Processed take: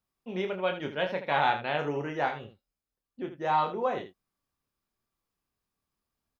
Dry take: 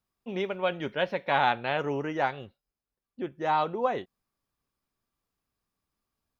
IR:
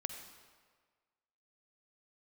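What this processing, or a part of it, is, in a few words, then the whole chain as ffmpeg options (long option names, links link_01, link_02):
slapback doubling: -filter_complex "[0:a]asplit=3[link_01][link_02][link_03];[link_02]adelay=27,volume=-6dB[link_04];[link_03]adelay=79,volume=-10.5dB[link_05];[link_01][link_04][link_05]amix=inputs=3:normalize=0,volume=-2.5dB"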